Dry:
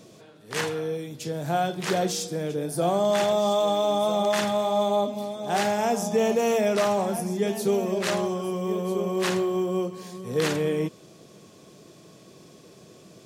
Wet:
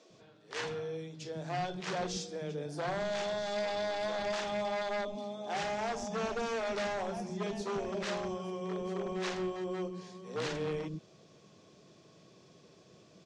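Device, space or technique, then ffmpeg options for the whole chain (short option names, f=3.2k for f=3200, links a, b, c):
synthesiser wavefolder: -filter_complex "[0:a]asettb=1/sr,asplit=3[a][b][c];[a]atrim=end=3.034[d];[b]atrim=start=3.03:end=3.56,asetpts=PTS-STARTPTS,afade=t=in:d=0.004:c=qsin,afade=t=out:st=0.526:d=0.004:c=qsin,equalizer=f=720:t=o:w=1.9:g=-2.5[e];[c]atrim=start=3.556[f];[d][e]acrossfade=d=0.004:c1=hsin:c2=qsin[g];[g][f]acrossfade=d=0.004:c1=qsin:c2=hsin,aeval=exprs='0.0944*(abs(mod(val(0)/0.0944+3,4)-2)-1)':c=same,lowpass=f=6.5k:w=0.5412,lowpass=f=6.5k:w=1.3066,acrossover=split=300[h][i];[h]adelay=100[j];[j][i]amix=inputs=2:normalize=0,volume=-8dB"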